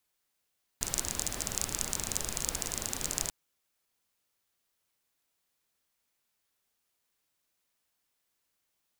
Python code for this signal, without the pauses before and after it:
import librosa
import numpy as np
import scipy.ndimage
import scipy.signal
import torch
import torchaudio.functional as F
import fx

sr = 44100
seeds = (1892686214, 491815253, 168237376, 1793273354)

y = fx.rain(sr, seeds[0], length_s=2.49, drops_per_s=28.0, hz=7000.0, bed_db=-3.0)